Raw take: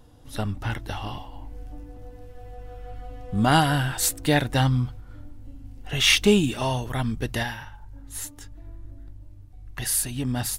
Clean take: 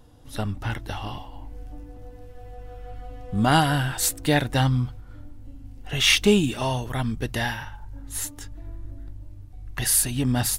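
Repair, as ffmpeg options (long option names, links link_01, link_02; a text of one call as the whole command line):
ffmpeg -i in.wav -af "asetnsamples=nb_out_samples=441:pad=0,asendcmd='7.43 volume volume 4dB',volume=0dB" out.wav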